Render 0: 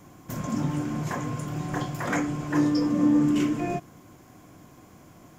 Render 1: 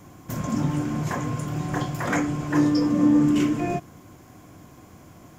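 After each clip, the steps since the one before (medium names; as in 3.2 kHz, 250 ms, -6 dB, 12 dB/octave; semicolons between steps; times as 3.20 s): peaking EQ 83 Hz +4.5 dB 0.77 oct; trim +2.5 dB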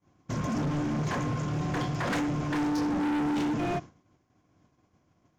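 steep low-pass 6.6 kHz 48 dB/octave; hard clipper -26.5 dBFS, distortion -5 dB; expander -34 dBFS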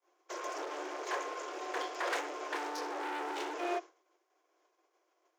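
steep high-pass 340 Hz 96 dB/octave; trim -2.5 dB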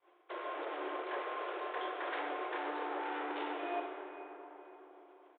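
reverse; compression 4:1, threshold -47 dBFS, peak gain reduction 14 dB; reverse; resampled via 8 kHz; algorithmic reverb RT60 4.4 s, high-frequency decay 0.4×, pre-delay 25 ms, DRR 2.5 dB; trim +7 dB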